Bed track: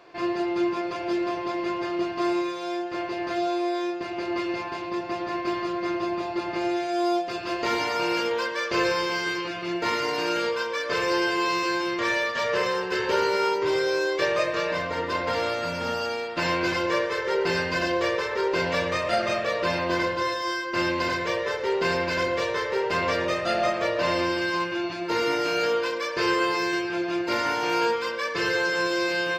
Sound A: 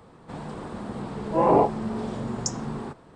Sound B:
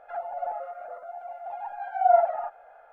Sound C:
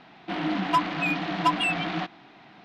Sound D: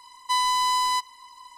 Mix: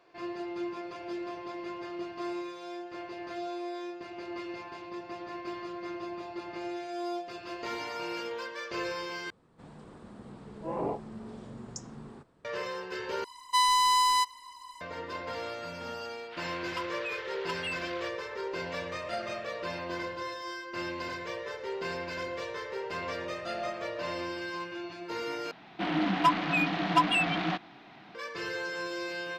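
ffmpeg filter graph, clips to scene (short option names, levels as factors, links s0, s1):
-filter_complex "[3:a]asplit=2[s0][s1];[0:a]volume=0.282[s2];[1:a]equalizer=f=840:w=1.6:g=-3.5[s3];[s0]highpass=f=1200:w=0.5412,highpass=f=1200:w=1.3066[s4];[s2]asplit=4[s5][s6][s7][s8];[s5]atrim=end=9.304[s9];[s3]atrim=end=3.15,asetpts=PTS-STARTPTS,volume=0.224[s10];[s6]atrim=start=12.446:end=13.244[s11];[4:a]atrim=end=1.57,asetpts=PTS-STARTPTS,volume=0.891[s12];[s7]atrim=start=14.806:end=25.514[s13];[s1]atrim=end=2.64,asetpts=PTS-STARTPTS,volume=0.891[s14];[s8]atrim=start=28.146[s15];[s4]atrim=end=2.64,asetpts=PTS-STARTPTS,volume=0.316,afade=t=in:d=0.004:c=hsin,afade=t=out:st=2.636:d=0.004:c=hsin,adelay=16030[s16];[s9][s10]acrossfade=d=0.004:c1=hsin:c2=hsin[s17];[s17][s11]acrossfade=d=0.004:c1=hsin:c2=hsin[s18];[s18][s12]acrossfade=d=0.004:c1=hsin:c2=hsin[s19];[s19][s13]acrossfade=d=0.004:c1=hsin:c2=hsin[s20];[s20][s14]acrossfade=d=0.004:c1=hsin:c2=hsin[s21];[s21][s15]acrossfade=d=0.004:c1=hsin:c2=hsin[s22];[s22][s16]amix=inputs=2:normalize=0"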